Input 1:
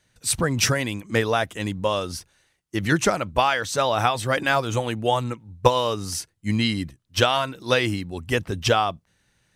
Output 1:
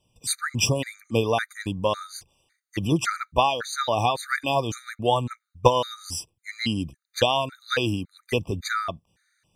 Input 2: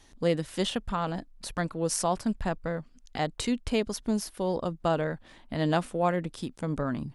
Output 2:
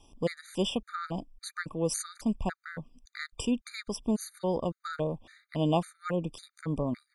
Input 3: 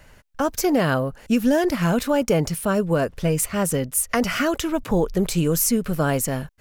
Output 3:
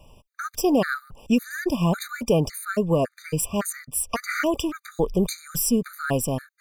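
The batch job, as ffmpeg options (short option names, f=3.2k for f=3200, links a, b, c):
-af "afftfilt=real='re*gt(sin(2*PI*1.8*pts/sr)*(1-2*mod(floor(b*sr/1024/1200),2)),0)':imag='im*gt(sin(2*PI*1.8*pts/sr)*(1-2*mod(floor(b*sr/1024/1200),2)),0)':win_size=1024:overlap=0.75"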